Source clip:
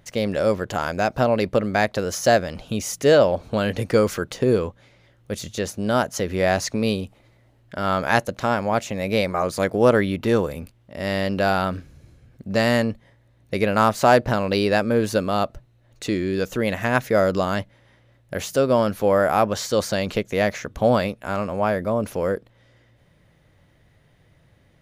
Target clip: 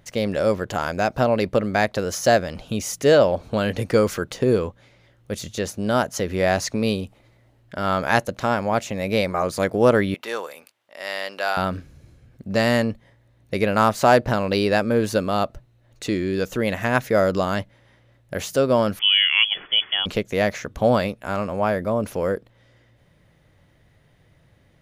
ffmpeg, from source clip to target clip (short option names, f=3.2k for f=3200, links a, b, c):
-filter_complex "[0:a]asettb=1/sr,asplit=3[a][b][c];[a]atrim=end=10.144[d];[b]atrim=start=10.14:end=11.57,asetpts=PTS-STARTPTS,afade=t=in:d=0.004:c=qsin,afade=t=out:st=1.426:d=0.004:c=qsin,highpass=780[e];[c]atrim=start=11.566[f];[d][e]acrossfade=d=0.004:c1=hsin:c2=qsin[g];[g][f]acrossfade=d=0.004:c1=qsin:c2=hsin,asettb=1/sr,asplit=3[h][i][j];[h]atrim=end=18.994[k];[i]atrim=start=18.99:end=20.06,asetpts=PTS-STARTPTS,afade=t=in:d=0.004:c=qsin,afade=t=out:st=1.066:d=0.004:c=qsin,lowpass=f=3k:t=q:w=0.5098,lowpass=f=3k:t=q:w=0.6013,lowpass=f=3k:t=q:w=0.9,lowpass=f=3k:t=q:w=2.563,afreqshift=-3500[l];[j]atrim=start=20.056[m];[k][l]acrossfade=d=0.004:c1=hsin:c2=qsin[n];[n][m]acrossfade=d=0.004:c1=qsin:c2=hsin"